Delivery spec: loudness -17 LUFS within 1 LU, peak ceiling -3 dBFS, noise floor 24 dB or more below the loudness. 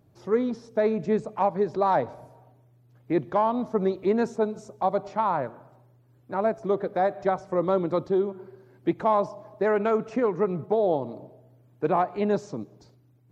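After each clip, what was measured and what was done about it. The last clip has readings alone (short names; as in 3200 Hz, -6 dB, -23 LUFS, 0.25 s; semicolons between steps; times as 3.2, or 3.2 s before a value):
loudness -26.5 LUFS; peak -10.5 dBFS; loudness target -17.0 LUFS
-> gain +9.5 dB; limiter -3 dBFS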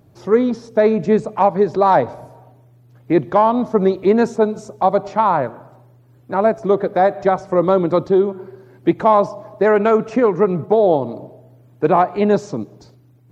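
loudness -17.0 LUFS; peak -3.0 dBFS; noise floor -50 dBFS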